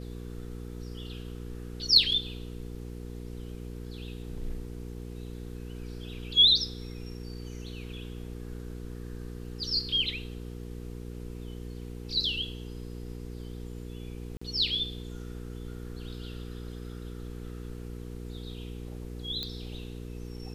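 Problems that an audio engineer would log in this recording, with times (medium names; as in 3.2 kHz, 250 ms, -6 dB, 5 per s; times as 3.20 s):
hum 60 Hz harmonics 8 -40 dBFS
14.37–14.41 s: dropout 45 ms
19.43 s: pop -20 dBFS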